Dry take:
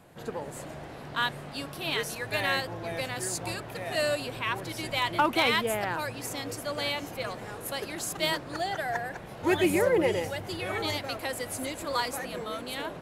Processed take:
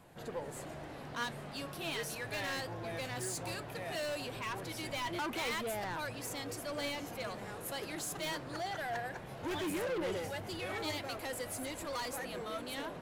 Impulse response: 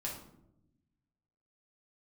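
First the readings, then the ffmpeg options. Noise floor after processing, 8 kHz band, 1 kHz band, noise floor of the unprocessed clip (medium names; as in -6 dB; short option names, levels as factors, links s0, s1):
-47 dBFS, -6.0 dB, -9.0 dB, -43 dBFS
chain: -af "asoftclip=type=tanh:threshold=0.0299,flanger=delay=0.9:depth=7.9:regen=79:speed=0.17:shape=triangular,volume=1.12"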